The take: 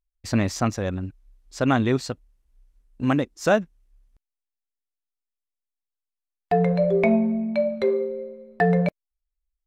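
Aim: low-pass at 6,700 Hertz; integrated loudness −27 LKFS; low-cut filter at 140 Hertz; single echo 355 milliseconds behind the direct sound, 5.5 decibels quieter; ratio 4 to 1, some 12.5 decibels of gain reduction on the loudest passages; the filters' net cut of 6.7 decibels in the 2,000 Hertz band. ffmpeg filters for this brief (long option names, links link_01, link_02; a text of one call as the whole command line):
ffmpeg -i in.wav -af "highpass=140,lowpass=6700,equalizer=frequency=2000:width_type=o:gain=-9,acompressor=threshold=-32dB:ratio=4,aecho=1:1:355:0.531,volume=8dB" out.wav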